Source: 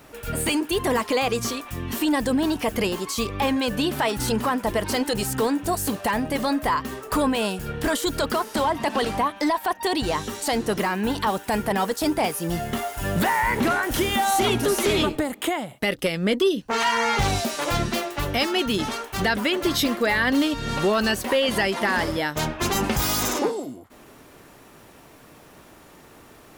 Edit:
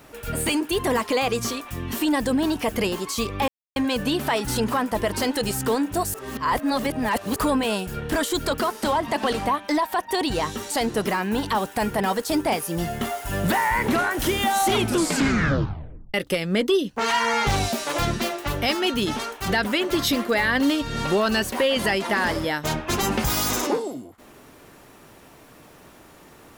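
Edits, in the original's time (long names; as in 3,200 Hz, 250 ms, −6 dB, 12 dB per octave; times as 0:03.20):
0:03.48: splice in silence 0.28 s
0:05.86–0:07.08: reverse
0:14.50: tape stop 1.36 s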